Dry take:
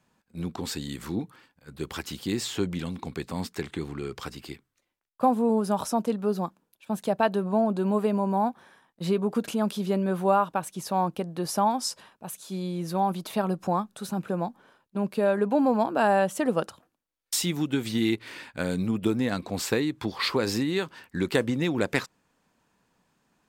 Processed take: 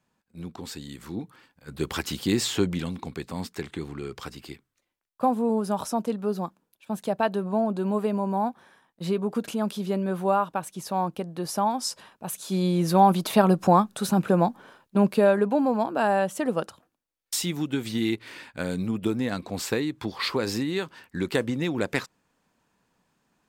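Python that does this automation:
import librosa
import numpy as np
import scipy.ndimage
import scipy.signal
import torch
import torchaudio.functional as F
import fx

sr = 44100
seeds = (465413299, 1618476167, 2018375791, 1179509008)

y = fx.gain(x, sr, db=fx.line((1.05, -5.0), (1.72, 5.0), (2.49, 5.0), (3.18, -1.0), (11.71, -1.0), (12.66, 8.0), (15.01, 8.0), (15.63, -1.0)))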